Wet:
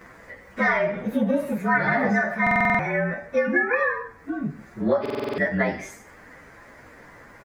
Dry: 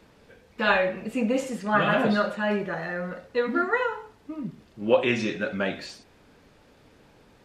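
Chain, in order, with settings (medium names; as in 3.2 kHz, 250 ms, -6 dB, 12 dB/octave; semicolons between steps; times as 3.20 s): frequency axis rescaled in octaves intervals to 112%; resonant high shelf 2.4 kHz -9 dB, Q 3; compression 6:1, threshold -26 dBFS, peak gain reduction 10 dB; on a send: delay 148 ms -22 dB; on the sum: buffer glitch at 2.42/5.01 s, samples 2048, times 7; tape noise reduction on one side only encoder only; trim +8 dB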